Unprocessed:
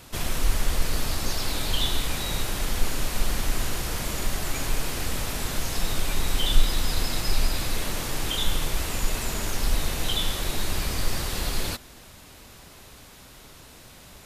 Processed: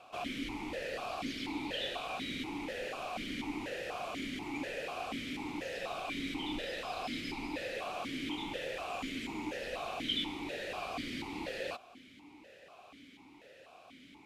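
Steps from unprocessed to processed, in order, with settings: vowel sequencer 4.1 Hz; gain +6 dB

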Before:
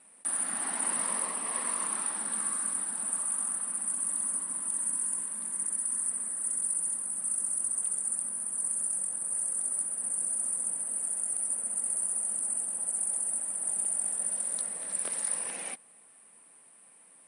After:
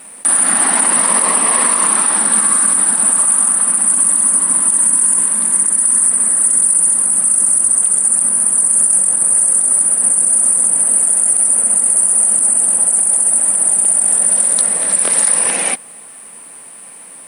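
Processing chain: requantised 12-bit, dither none; maximiser +22.5 dB; gain -1 dB

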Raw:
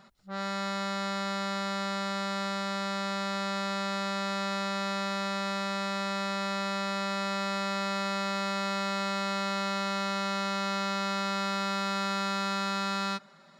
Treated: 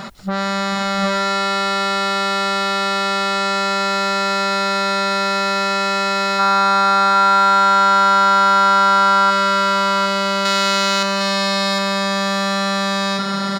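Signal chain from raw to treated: 6.39–9.31 spectral gain 690–1600 Hz +10 dB; 10.45–11.03 high shelf 2000 Hz +9.5 dB; in parallel at +2 dB: negative-ratio compressor -44 dBFS, ratio -1; on the sum: tapped delay 0.313/0.444/0.709/0.755 s -17/-12.5/-11/-4.5 dB; gain +9 dB

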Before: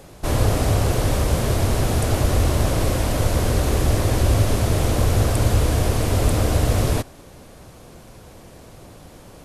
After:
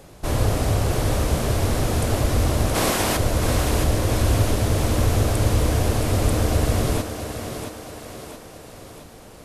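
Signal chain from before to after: 2.74–3.16 spectral limiter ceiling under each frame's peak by 20 dB; on a send: thinning echo 0.672 s, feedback 54%, high-pass 170 Hz, level -6.5 dB; on the sum: gain -2 dB

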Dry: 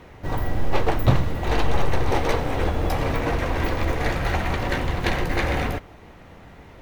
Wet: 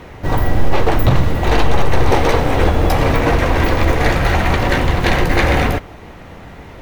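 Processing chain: maximiser +11 dB; gain -1.5 dB

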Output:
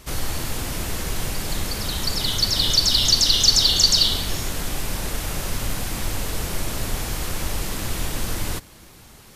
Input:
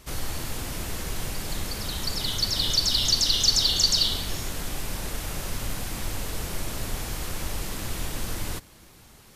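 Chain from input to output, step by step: gain +5 dB

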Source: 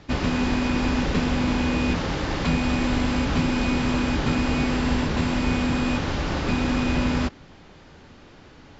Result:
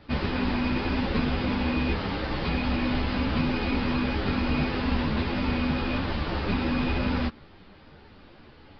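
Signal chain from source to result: downsampling 11025 Hz; ensemble effect

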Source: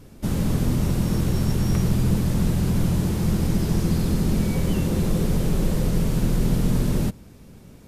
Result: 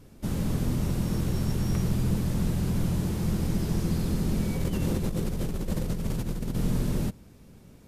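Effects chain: 4.57–6.55 negative-ratio compressor -22 dBFS, ratio -0.5; gain -5.5 dB

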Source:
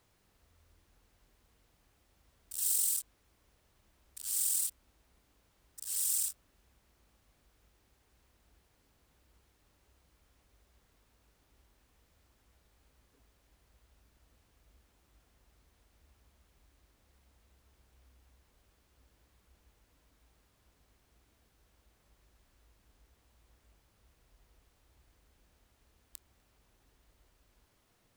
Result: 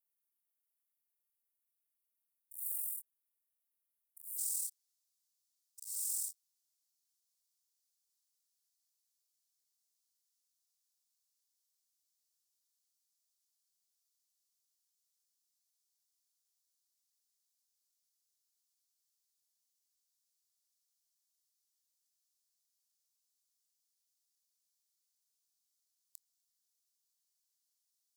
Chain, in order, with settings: inverse Chebyshev high-pass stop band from 2800 Hz, stop band 70 dB, from 4.37 s stop band from 1100 Hz; gain -5.5 dB

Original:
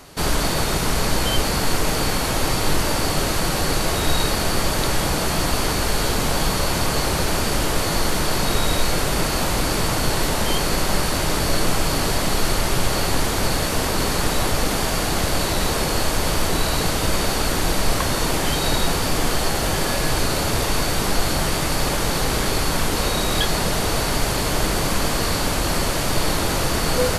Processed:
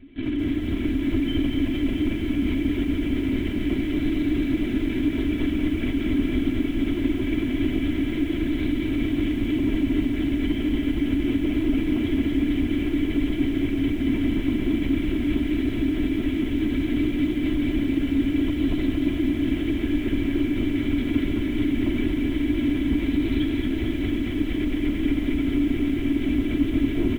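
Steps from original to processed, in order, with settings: vowel filter i; tilt -3.5 dB/oct; on a send: tapped delay 52/68/151/201/229 ms -12.5/-10/-11.5/-16.5/-10.5 dB; on the sum: one-sided clip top -22 dBFS; brick-wall FIR high-pass 160 Hz; in parallel at 0 dB: limiter -25.5 dBFS, peak gain reduction 7 dB; on the sum: darkening echo 0.233 s, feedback 19%, low-pass 2600 Hz, level -10.5 dB; LPC vocoder at 8 kHz whisper; comb 3 ms, depth 59%; lo-fi delay 0.226 s, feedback 80%, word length 8-bit, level -5.5 dB; gain -3.5 dB

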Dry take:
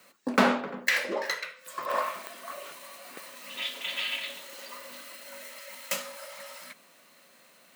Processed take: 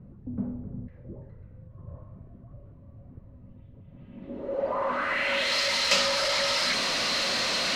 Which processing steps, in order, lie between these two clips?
zero-crossing step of -25.5 dBFS; low-pass sweep 110 Hz -> 4700 Hz, 3.87–5.56; gain +3 dB

